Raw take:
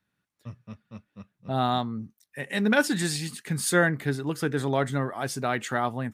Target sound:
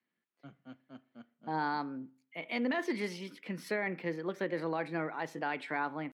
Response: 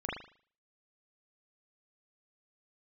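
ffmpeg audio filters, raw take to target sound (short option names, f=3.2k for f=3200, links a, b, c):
-filter_complex "[0:a]acrossover=split=160 3300:gain=0.0794 1 0.0708[a][b][c];[a][b][c]amix=inputs=3:normalize=0,asetrate=52444,aresample=44100,atempo=0.840896,alimiter=limit=-18dB:level=0:latency=1:release=46,asplit=2[d][e];[1:a]atrim=start_sample=2205[f];[e][f]afir=irnorm=-1:irlink=0,volume=-21.5dB[g];[d][g]amix=inputs=2:normalize=0,volume=-6dB"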